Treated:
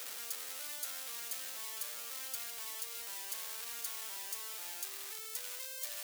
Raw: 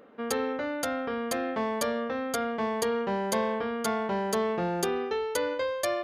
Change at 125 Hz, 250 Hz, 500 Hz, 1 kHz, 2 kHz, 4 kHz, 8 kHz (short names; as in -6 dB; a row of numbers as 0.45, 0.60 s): under -40 dB, under -35 dB, -30.0 dB, -22.0 dB, -13.5 dB, -4.5 dB, -1.5 dB